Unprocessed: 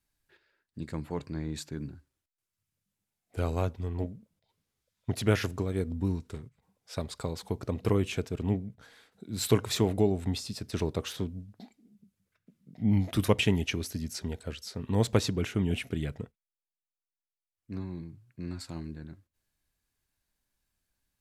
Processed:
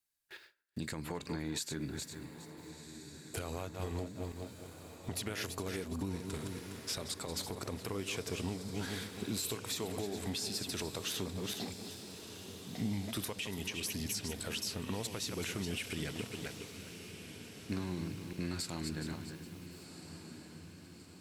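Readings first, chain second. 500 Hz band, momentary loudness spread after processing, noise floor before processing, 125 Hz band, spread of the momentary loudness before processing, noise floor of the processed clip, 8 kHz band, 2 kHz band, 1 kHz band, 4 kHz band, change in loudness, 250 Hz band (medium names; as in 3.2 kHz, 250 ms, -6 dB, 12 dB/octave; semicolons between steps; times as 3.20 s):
-9.0 dB, 12 LU, under -85 dBFS, -10.5 dB, 16 LU, -54 dBFS, +1.5 dB, -3.5 dB, -5.5 dB, -1.0 dB, -8.5 dB, -7.5 dB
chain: backward echo that repeats 206 ms, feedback 44%, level -12 dB; gate with hold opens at -58 dBFS; tilt EQ +2.5 dB/octave; compression 12:1, threshold -44 dBFS, peak gain reduction 23.5 dB; peak limiter -38 dBFS, peak gain reduction 8 dB; on a send: echo that smears into a reverb 1379 ms, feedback 57%, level -11 dB; on the sum: trim +11 dB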